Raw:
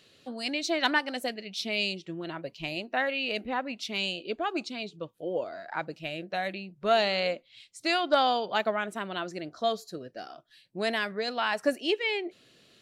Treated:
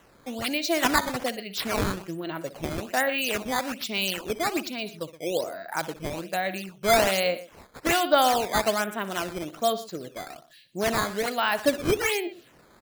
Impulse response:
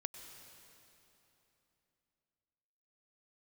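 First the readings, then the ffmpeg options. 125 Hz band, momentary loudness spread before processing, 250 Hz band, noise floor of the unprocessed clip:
+8.0 dB, 13 LU, +4.0 dB, -62 dBFS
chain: -af "aecho=1:1:62|120:0.168|0.15,acrusher=samples=9:mix=1:aa=0.000001:lfo=1:lforange=14.4:lforate=1.2,volume=1.5"

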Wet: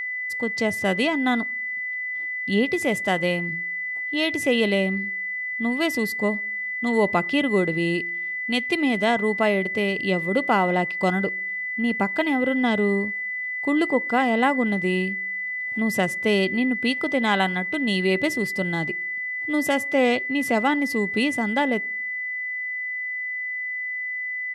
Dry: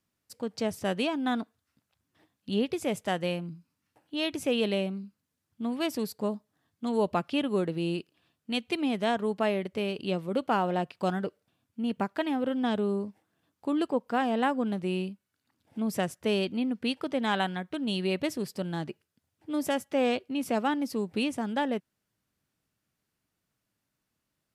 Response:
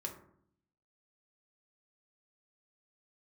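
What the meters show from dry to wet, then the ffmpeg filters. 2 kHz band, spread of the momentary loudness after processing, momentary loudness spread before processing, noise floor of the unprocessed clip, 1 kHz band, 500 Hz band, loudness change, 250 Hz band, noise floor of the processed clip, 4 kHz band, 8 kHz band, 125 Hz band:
+16.5 dB, 6 LU, 10 LU, -83 dBFS, +6.0 dB, +6.0 dB, +7.0 dB, +6.0 dB, -30 dBFS, +6.0 dB, +6.0 dB, +6.0 dB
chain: -filter_complex "[0:a]aresample=32000,aresample=44100,asplit=2[s0][s1];[1:a]atrim=start_sample=2205[s2];[s1][s2]afir=irnorm=-1:irlink=0,volume=0.119[s3];[s0][s3]amix=inputs=2:normalize=0,aeval=exprs='val(0)+0.0251*sin(2*PI*2000*n/s)':c=same,volume=1.88"

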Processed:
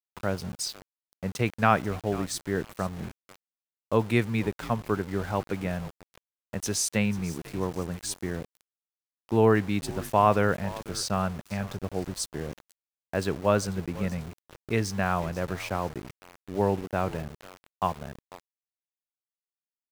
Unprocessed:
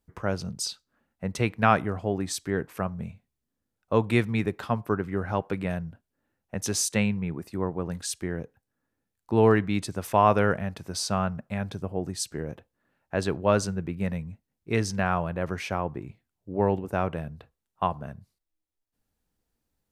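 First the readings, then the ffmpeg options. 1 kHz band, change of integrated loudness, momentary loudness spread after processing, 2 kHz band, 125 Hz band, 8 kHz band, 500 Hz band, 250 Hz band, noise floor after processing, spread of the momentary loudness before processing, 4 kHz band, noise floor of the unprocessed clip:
-1.0 dB, -1.0 dB, 15 LU, -1.0 dB, -1.0 dB, -1.0 dB, -1.0 dB, -1.0 dB, under -85 dBFS, 14 LU, -1.0 dB, -84 dBFS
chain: -filter_complex "[0:a]asplit=4[s0][s1][s2][s3];[s1]adelay=491,afreqshift=-73,volume=0.126[s4];[s2]adelay=982,afreqshift=-146,volume=0.0417[s5];[s3]adelay=1473,afreqshift=-219,volume=0.0136[s6];[s0][s4][s5][s6]amix=inputs=4:normalize=0,aeval=exprs='val(0)*gte(abs(val(0)),0.0133)':c=same,volume=0.891"

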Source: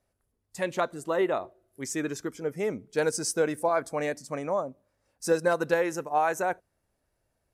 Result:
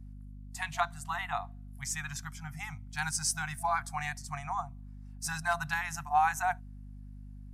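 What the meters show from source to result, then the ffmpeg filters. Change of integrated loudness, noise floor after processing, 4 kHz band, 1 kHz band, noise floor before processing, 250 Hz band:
-5.0 dB, -46 dBFS, 0.0 dB, -0.5 dB, -78 dBFS, -14.0 dB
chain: -af "afftfilt=real='re*(1-between(b*sr/4096,170,680))':imag='im*(1-between(b*sr/4096,170,680))':win_size=4096:overlap=0.75,aeval=exprs='val(0)+0.00562*(sin(2*PI*50*n/s)+sin(2*PI*2*50*n/s)/2+sin(2*PI*3*50*n/s)/3+sin(2*PI*4*50*n/s)/4+sin(2*PI*5*50*n/s)/5)':c=same"

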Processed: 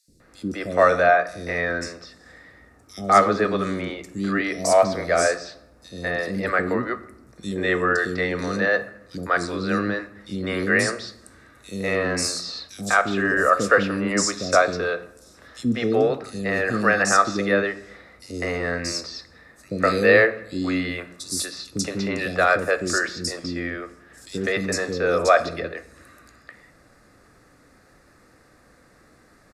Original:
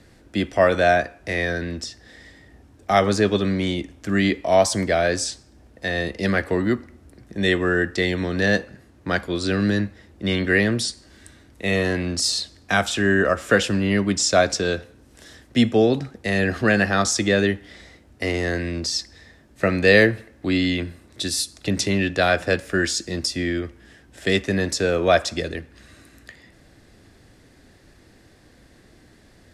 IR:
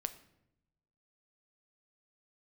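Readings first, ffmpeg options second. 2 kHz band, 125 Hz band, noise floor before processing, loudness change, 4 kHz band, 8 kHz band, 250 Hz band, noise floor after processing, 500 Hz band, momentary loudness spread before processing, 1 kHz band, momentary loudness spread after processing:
+0.5 dB, -6.0 dB, -53 dBFS, -0.5 dB, -5.5 dB, -1.5 dB, -4.0 dB, -55 dBFS, -0.5 dB, 11 LU, +3.5 dB, 15 LU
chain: -filter_complex "[0:a]equalizer=f=100:t=o:w=0.33:g=-3,equalizer=f=500:t=o:w=0.33:g=5,equalizer=f=1250:t=o:w=0.33:g=11,equalizer=f=3150:t=o:w=0.33:g=-10,acrossover=split=370|4200[s0][s1][s2];[s0]adelay=80[s3];[s1]adelay=200[s4];[s3][s4][s2]amix=inputs=3:normalize=0,asplit=2[s5][s6];[1:a]atrim=start_sample=2205,lowshelf=f=130:g=-11[s7];[s6][s7]afir=irnorm=-1:irlink=0,volume=2.82[s8];[s5][s8]amix=inputs=2:normalize=0,volume=0.266"

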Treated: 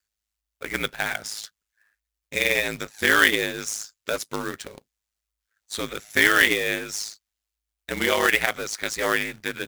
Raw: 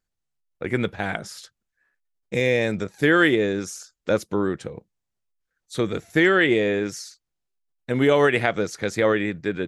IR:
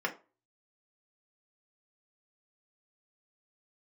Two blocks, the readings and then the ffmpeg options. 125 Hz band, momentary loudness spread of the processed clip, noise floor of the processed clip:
-11.0 dB, 17 LU, -85 dBFS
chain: -af "tiltshelf=f=800:g=-9,aeval=exprs='val(0)*sin(2*PI*53*n/s)':c=same,acrusher=bits=2:mode=log:mix=0:aa=0.000001"

